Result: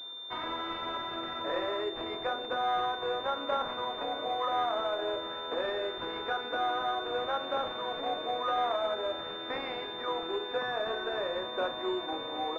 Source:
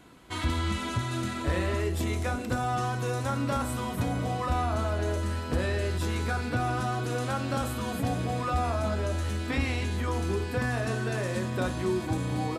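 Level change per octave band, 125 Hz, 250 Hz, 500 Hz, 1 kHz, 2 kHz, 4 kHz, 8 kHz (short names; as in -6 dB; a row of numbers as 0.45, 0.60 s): -28.0 dB, -11.0 dB, 0.0 dB, +1.0 dB, -3.0 dB, +5.0 dB, under -25 dB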